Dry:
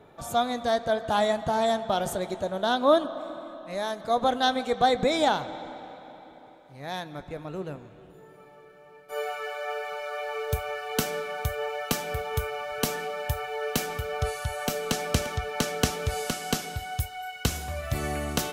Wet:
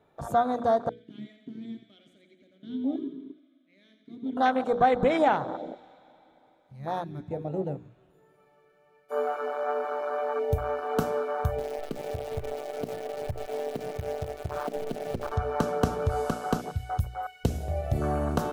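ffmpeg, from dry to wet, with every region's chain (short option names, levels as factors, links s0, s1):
-filter_complex "[0:a]asettb=1/sr,asplit=3[s0][s1][s2];[s0]atrim=end=0.894[s3];[s1]atrim=start=0.89:end=4.37,asetpts=PTS-STARTPTS,afade=t=in:d=0.004:c=qsin,afade=t=out:st=3.476:d=0.004:c=qsin,aecho=1:1:87|174|261|348|435|522:0.422|0.223|0.118|0.0628|0.0333|0.0176,atrim=end_sample=153468,acrusher=bits=6:mode=log:mix=0:aa=0.000001,asplit=3[s4][s5][s6];[s4]bandpass=f=270:t=q:w=8,volume=1[s7];[s5]bandpass=f=2290:t=q:w=8,volume=0.501[s8];[s6]bandpass=f=3010:t=q:w=8,volume=0.355[s9];[s7][s8][s9]amix=inputs=3:normalize=0[s10];[s2]atrim=start=4.366[s11];[s3][s10]acrossfade=d=0.004:c1=hsin:c2=qsin[s12];[s12][s11]acrossfade=d=0.004:c1=qsin:c2=hsin,asettb=1/sr,asplit=3[s13][s14][s15];[s13]atrim=end=11.584[s16];[s14]atrim=start=11.58:end=15.32,asetpts=PTS-STARTPTS,afade=t=in:d=0.004:c=qsin,afade=t=out:st=3.736:d=0.004:c=qsin,bass=f=250:g=-1,treble=f=4000:g=-12,acompressor=threshold=0.0316:ratio=10:attack=3.2:release=140:knee=1:detection=peak,acrusher=bits=6:dc=4:mix=0:aa=0.000001[s17];[s15]atrim=start=15.316[s18];[s16][s17]acrossfade=d=0.004:c1=hsin:c2=qsin[s19];[s19][s18]acrossfade=d=0.004:c1=qsin:c2=hsin,afwtdn=0.0316,bandreject=f=60:t=h:w=6,bandreject=f=120:t=h:w=6,bandreject=f=180:t=h:w=6,bandreject=f=240:t=h:w=6,bandreject=f=300:t=h:w=6,bandreject=f=360:t=h:w=6,bandreject=f=420:t=h:w=6,bandreject=f=480:t=h:w=6,acompressor=threshold=0.0282:ratio=1.5,volume=1.88"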